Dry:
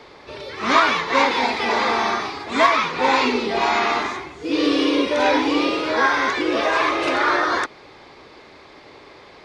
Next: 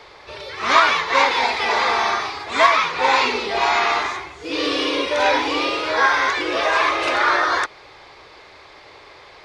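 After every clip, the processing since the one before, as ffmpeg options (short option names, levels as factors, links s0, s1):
-af "equalizer=f=230:t=o:w=1.4:g=-13,volume=1.33"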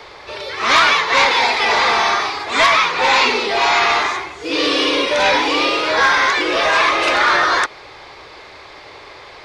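-filter_complex "[0:a]acrossover=split=180|1900[s0][s1][s2];[s0]acompressor=threshold=0.002:ratio=6[s3];[s1]asoftclip=type=tanh:threshold=0.119[s4];[s3][s4][s2]amix=inputs=3:normalize=0,volume=2"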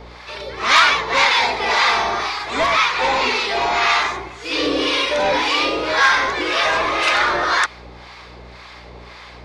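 -filter_complex "[0:a]aeval=exprs='val(0)+0.01*(sin(2*PI*60*n/s)+sin(2*PI*2*60*n/s)/2+sin(2*PI*3*60*n/s)/3+sin(2*PI*4*60*n/s)/4+sin(2*PI*5*60*n/s)/5)':c=same,acrossover=split=810[s0][s1];[s0]aeval=exprs='val(0)*(1-0.7/2+0.7/2*cos(2*PI*1.9*n/s))':c=same[s2];[s1]aeval=exprs='val(0)*(1-0.7/2-0.7/2*cos(2*PI*1.9*n/s))':c=same[s3];[s2][s3]amix=inputs=2:normalize=0,volume=1.12"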